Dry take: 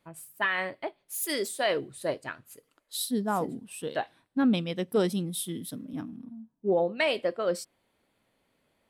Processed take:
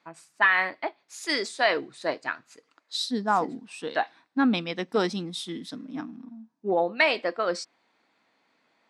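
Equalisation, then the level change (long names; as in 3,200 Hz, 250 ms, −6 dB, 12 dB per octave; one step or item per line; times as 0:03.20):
loudspeaker in its box 340–6,100 Hz, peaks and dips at 400 Hz −7 dB, 560 Hz −9 dB, 3,100 Hz −7 dB
+8.0 dB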